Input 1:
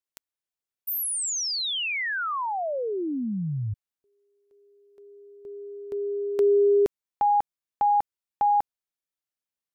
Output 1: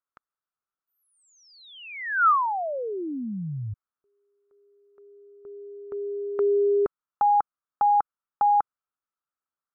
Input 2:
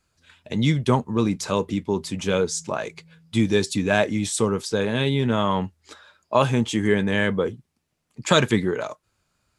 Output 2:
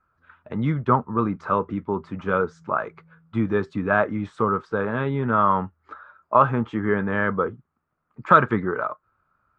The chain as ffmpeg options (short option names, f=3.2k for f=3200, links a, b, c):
-af "lowpass=f=1.3k:t=q:w=5.6,volume=-3dB"